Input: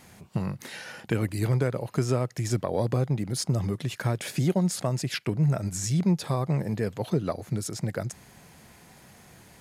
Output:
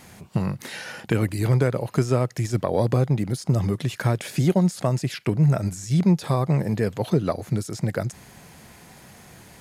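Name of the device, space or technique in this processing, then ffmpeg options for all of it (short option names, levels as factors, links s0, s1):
de-esser from a sidechain: -filter_complex "[0:a]asplit=2[s0][s1];[s1]highpass=4500,apad=whole_len=423614[s2];[s0][s2]sidechaincompress=threshold=0.00891:ratio=6:attack=3.5:release=40,volume=1.78"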